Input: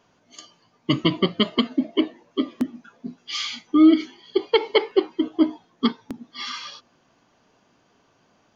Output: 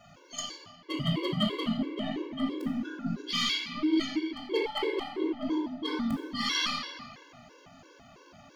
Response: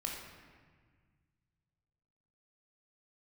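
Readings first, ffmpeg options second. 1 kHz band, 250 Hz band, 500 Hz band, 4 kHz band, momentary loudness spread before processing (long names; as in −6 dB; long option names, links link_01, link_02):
−5.0 dB, −9.5 dB, −10.0 dB, −3.5 dB, 19 LU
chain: -filter_complex "[0:a]bandreject=frequency=6100:width=15,areverse,acompressor=threshold=-32dB:ratio=8,areverse,crystalizer=i=0.5:c=0,aeval=exprs='0.0708*(cos(1*acos(clip(val(0)/0.0708,-1,1)))-cos(1*PI/2))+0.00251*(cos(3*acos(clip(val(0)/0.0708,-1,1)))-cos(3*PI/2))+0.00355*(cos(5*acos(clip(val(0)/0.0708,-1,1)))-cos(5*PI/2))+0.000631*(cos(8*acos(clip(val(0)/0.0708,-1,1)))-cos(8*PI/2))':channel_layout=same[link_01];[1:a]atrim=start_sample=2205[link_02];[link_01][link_02]afir=irnorm=-1:irlink=0,afftfilt=real='re*gt(sin(2*PI*3*pts/sr)*(1-2*mod(floor(b*sr/1024/290),2)),0)':imag='im*gt(sin(2*PI*3*pts/sr)*(1-2*mod(floor(b*sr/1024/290),2)),0)':win_size=1024:overlap=0.75,volume=8.5dB"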